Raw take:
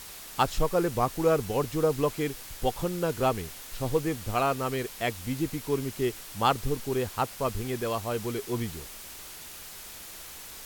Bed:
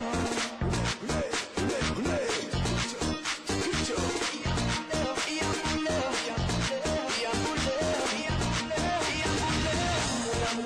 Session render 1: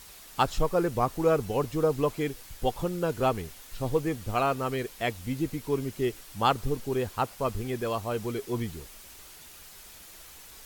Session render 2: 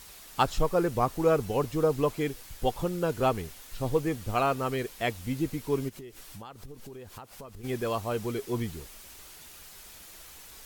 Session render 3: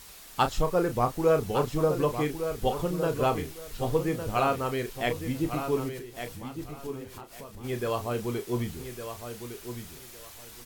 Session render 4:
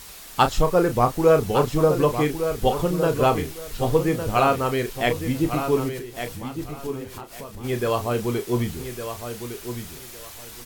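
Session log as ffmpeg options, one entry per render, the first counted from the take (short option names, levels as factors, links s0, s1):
-af "afftdn=nr=6:nf=-44"
-filter_complex "[0:a]asplit=3[s0][s1][s2];[s0]afade=t=out:st=5.88:d=0.02[s3];[s1]acompressor=threshold=0.01:ratio=16:attack=3.2:release=140:knee=1:detection=peak,afade=t=in:st=5.88:d=0.02,afade=t=out:st=7.63:d=0.02[s4];[s2]afade=t=in:st=7.63:d=0.02[s5];[s3][s4][s5]amix=inputs=3:normalize=0"
-filter_complex "[0:a]asplit=2[s0][s1];[s1]adelay=33,volume=0.355[s2];[s0][s2]amix=inputs=2:normalize=0,aecho=1:1:1158|2316|3474:0.355|0.0745|0.0156"
-af "volume=2.11"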